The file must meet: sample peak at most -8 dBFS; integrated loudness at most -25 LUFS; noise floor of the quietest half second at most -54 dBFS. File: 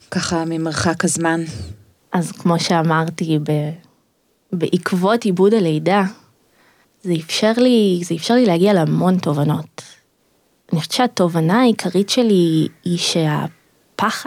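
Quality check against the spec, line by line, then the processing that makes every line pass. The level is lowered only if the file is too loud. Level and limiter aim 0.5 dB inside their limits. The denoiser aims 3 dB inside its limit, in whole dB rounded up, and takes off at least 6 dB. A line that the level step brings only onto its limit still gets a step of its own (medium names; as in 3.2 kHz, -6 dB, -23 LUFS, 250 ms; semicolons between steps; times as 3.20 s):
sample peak -4.5 dBFS: fail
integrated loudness -17.5 LUFS: fail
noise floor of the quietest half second -62 dBFS: pass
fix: trim -8 dB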